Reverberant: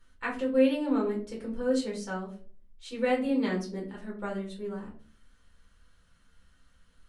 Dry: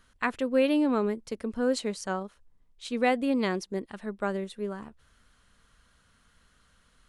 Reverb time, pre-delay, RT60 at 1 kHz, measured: 0.45 s, 6 ms, 0.35 s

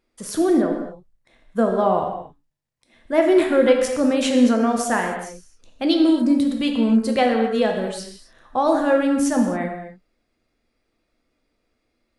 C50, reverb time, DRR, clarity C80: 4.5 dB, no single decay rate, 2.0 dB, 6.5 dB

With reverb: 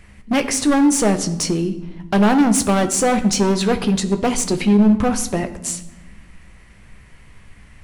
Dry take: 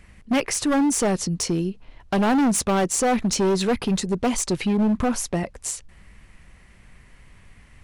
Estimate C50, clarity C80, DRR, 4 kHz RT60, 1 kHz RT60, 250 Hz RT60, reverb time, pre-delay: 13.0 dB, 15.0 dB, 8.0 dB, 0.75 s, 1.0 s, 1.8 s, 1.1 s, 6 ms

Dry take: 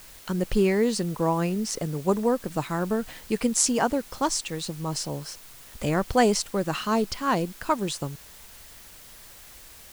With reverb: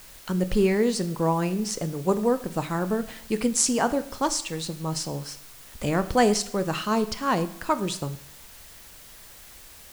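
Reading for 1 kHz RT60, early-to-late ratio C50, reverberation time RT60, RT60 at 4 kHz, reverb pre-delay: 0.70 s, 15.5 dB, 0.70 s, 0.65 s, 7 ms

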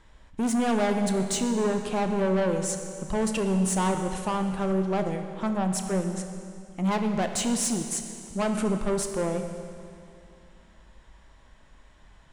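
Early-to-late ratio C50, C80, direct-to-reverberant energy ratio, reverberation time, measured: 6.5 dB, 7.5 dB, 5.5 dB, 2.5 s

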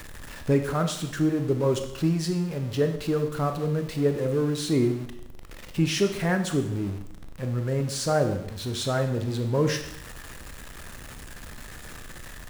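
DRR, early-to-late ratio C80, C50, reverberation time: 6.0 dB, 11.5 dB, 9.0 dB, 0.80 s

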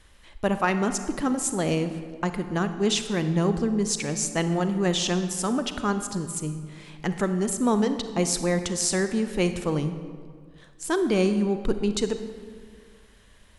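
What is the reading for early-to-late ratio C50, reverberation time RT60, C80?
9.5 dB, 1.9 s, 11.0 dB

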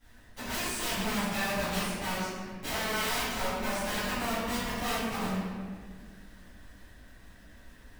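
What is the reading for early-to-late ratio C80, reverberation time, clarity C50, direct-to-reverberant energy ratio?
0.0 dB, 1.8 s, -3.0 dB, -16.0 dB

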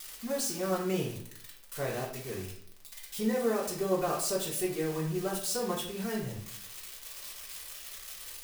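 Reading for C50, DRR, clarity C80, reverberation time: 5.5 dB, -5.0 dB, 9.0 dB, 0.65 s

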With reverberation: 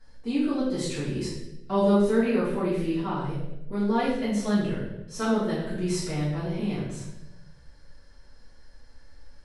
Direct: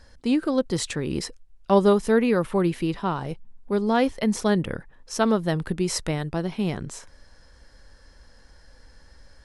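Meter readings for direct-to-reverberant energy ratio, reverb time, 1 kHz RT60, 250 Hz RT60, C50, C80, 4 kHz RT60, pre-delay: -12.0 dB, 0.90 s, 0.75 s, 1.2 s, 1.5 dB, 4.0 dB, 0.75 s, 4 ms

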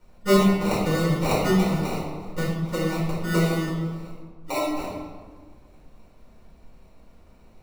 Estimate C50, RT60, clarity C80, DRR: 0.5 dB, 1.5 s, 3.0 dB, -8.0 dB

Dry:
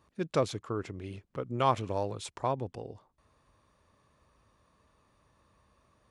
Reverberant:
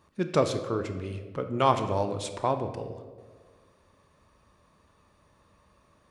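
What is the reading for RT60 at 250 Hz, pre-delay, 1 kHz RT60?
1.7 s, 3 ms, 1.3 s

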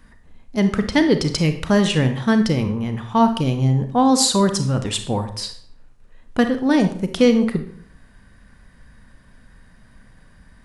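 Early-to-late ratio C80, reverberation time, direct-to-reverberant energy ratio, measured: 14.0 dB, 0.55 s, 7.5 dB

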